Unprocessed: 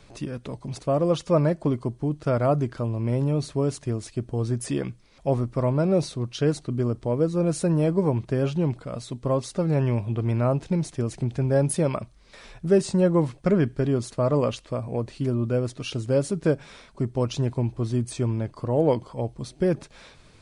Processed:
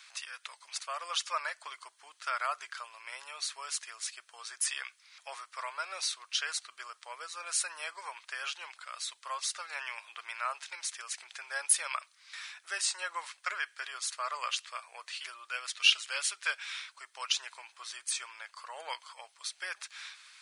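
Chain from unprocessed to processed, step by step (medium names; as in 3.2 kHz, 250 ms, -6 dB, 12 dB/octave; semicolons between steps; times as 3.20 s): inverse Chebyshev high-pass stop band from 220 Hz, stop band 80 dB; 14.63–17.32 s: dynamic bell 2.9 kHz, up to +8 dB, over -54 dBFS, Q 1.2; trim +5 dB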